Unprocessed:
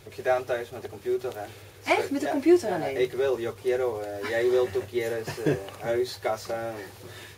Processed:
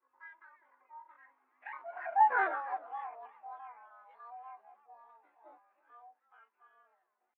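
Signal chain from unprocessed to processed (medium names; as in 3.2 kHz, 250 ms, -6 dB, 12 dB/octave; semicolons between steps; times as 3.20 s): frequency axis rescaled in octaves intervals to 113%; Doppler pass-by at 2.38 s, 39 m/s, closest 3 m; pitch shift +11.5 st; mistuned SSB +65 Hz 320–2300 Hz; modulated delay 311 ms, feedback 31%, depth 210 cents, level -19.5 dB; trim +3 dB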